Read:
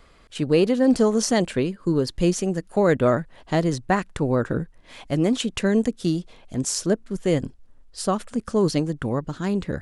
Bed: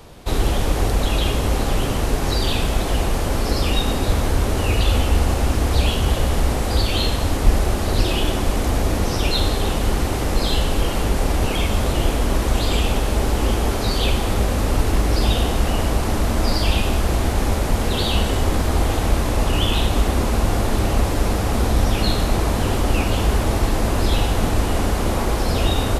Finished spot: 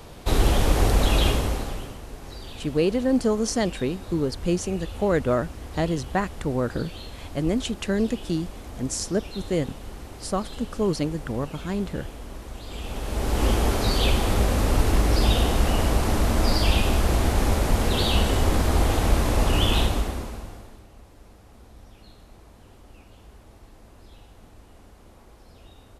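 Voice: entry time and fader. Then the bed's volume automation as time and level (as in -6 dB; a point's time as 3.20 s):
2.25 s, -3.5 dB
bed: 1.28 s -0.5 dB
2.01 s -19 dB
12.63 s -19 dB
13.44 s -2 dB
19.81 s -2 dB
20.87 s -30.5 dB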